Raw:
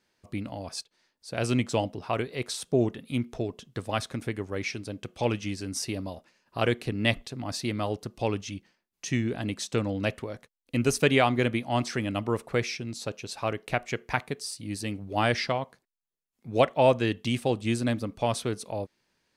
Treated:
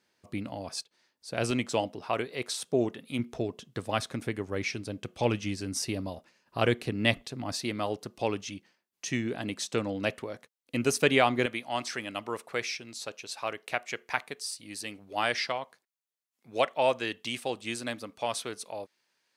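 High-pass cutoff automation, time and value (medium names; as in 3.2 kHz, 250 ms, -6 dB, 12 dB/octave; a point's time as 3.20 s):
high-pass 6 dB/octave
130 Hz
from 1.51 s 300 Hz
from 3.19 s 110 Hz
from 4.48 s 46 Hz
from 6.83 s 110 Hz
from 7.53 s 250 Hz
from 11.46 s 860 Hz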